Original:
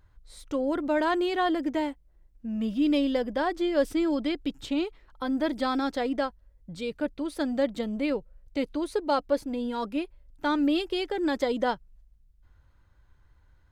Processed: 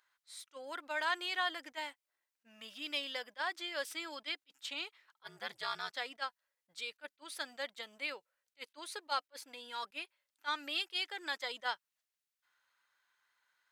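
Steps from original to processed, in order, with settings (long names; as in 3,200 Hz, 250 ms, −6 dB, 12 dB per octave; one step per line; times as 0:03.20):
high-pass filter 1,500 Hz 12 dB per octave
0:05.23–0:05.94: ring modulation 98 Hz
level that may rise only so fast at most 580 dB per second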